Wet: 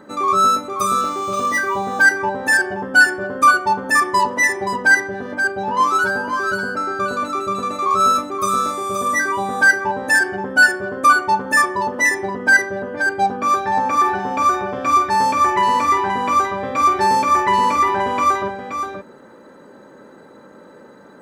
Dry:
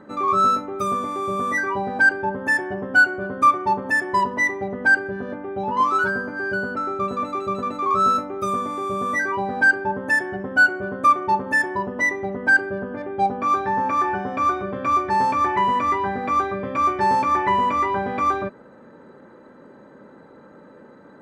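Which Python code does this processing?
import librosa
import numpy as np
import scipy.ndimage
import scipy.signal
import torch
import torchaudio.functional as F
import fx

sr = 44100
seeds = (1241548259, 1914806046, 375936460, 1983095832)

p1 = fx.bass_treble(x, sr, bass_db=-4, treble_db=12)
p2 = p1 + fx.echo_single(p1, sr, ms=526, db=-7.0, dry=0)
p3 = fx.resample_linear(p2, sr, factor=3, at=(1.01, 2.03))
y = F.gain(torch.from_numpy(p3), 3.0).numpy()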